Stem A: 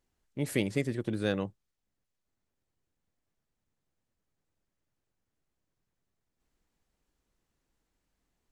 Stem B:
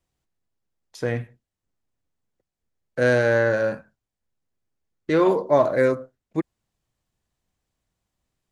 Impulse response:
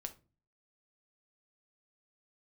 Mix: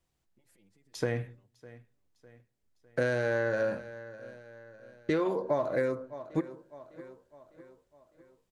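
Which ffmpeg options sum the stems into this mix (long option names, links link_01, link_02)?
-filter_complex "[0:a]acompressor=threshold=-34dB:ratio=2.5,alimiter=level_in=12dB:limit=-24dB:level=0:latency=1:release=92,volume=-12dB,asplit=2[link_01][link_02];[link_02]adelay=4.9,afreqshift=-0.75[link_03];[link_01][link_03]amix=inputs=2:normalize=1,volume=-17.5dB,asplit=2[link_04][link_05];[link_05]volume=-18.5dB[link_06];[1:a]volume=-3.5dB,asplit=3[link_07][link_08][link_09];[link_08]volume=-4dB[link_10];[link_09]volume=-21.5dB[link_11];[2:a]atrim=start_sample=2205[link_12];[link_10][link_12]afir=irnorm=-1:irlink=0[link_13];[link_06][link_11]amix=inputs=2:normalize=0,aecho=0:1:604|1208|1812|2416|3020|3624|4228:1|0.48|0.23|0.111|0.0531|0.0255|0.0122[link_14];[link_04][link_07][link_13][link_14]amix=inputs=4:normalize=0,acompressor=threshold=-25dB:ratio=16"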